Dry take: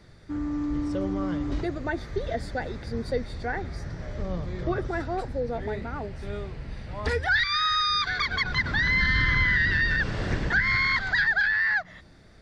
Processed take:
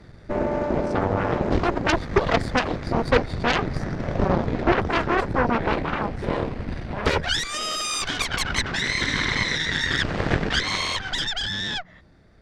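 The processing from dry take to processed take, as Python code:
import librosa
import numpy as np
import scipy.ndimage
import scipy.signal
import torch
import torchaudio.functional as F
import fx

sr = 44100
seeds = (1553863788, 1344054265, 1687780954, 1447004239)

y = fx.high_shelf(x, sr, hz=2800.0, db=-9.0)
y = fx.rider(y, sr, range_db=4, speed_s=0.5)
y = fx.cheby_harmonics(y, sr, harmonics=(7, 8), levels_db=(-12, -14), full_scale_db=-12.5)
y = y * librosa.db_to_amplitude(5.0)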